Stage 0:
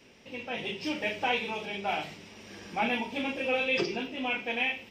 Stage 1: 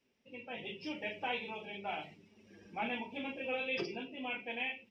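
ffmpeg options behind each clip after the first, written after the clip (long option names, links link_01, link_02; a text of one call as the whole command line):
ffmpeg -i in.wav -af "afftdn=noise_reduction=14:noise_floor=-43,volume=-8.5dB" out.wav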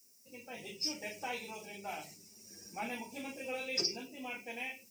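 ffmpeg -i in.wav -af "aexciter=amount=15.5:drive=9.5:freq=5200,volume=-2.5dB" out.wav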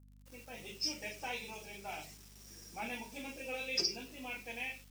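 ffmpeg -i in.wav -af "acrusher=bits=8:mix=0:aa=0.000001,adynamicequalizer=threshold=0.00355:dfrequency=3300:dqfactor=0.82:tfrequency=3300:tqfactor=0.82:attack=5:release=100:ratio=0.375:range=2:mode=boostabove:tftype=bell,aeval=exprs='val(0)+0.00158*(sin(2*PI*50*n/s)+sin(2*PI*2*50*n/s)/2+sin(2*PI*3*50*n/s)/3+sin(2*PI*4*50*n/s)/4+sin(2*PI*5*50*n/s)/5)':channel_layout=same,volume=-2.5dB" out.wav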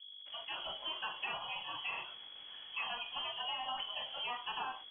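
ffmpeg -i in.wav -af "lowpass=frequency=2900:width_type=q:width=0.5098,lowpass=frequency=2900:width_type=q:width=0.6013,lowpass=frequency=2900:width_type=q:width=0.9,lowpass=frequency=2900:width_type=q:width=2.563,afreqshift=-3400,acompressor=threshold=-44dB:ratio=6,volume=7.5dB" out.wav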